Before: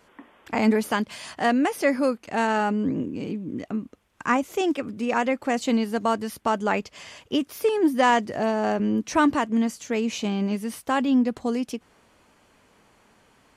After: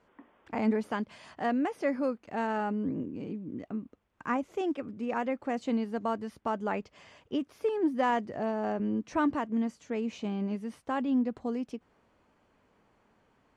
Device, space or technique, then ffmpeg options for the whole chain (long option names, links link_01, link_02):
through cloth: -af "lowpass=8900,highshelf=frequency=2600:gain=-12,volume=-7dB"